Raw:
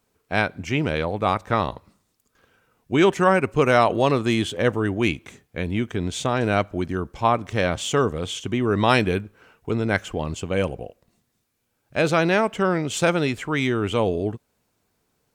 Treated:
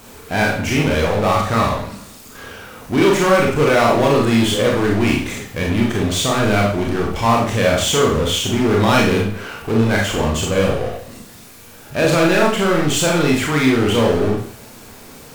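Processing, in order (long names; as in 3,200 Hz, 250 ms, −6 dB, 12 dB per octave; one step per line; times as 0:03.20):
power curve on the samples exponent 0.5
four-comb reverb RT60 0.5 s, combs from 27 ms, DRR −2 dB
level −5 dB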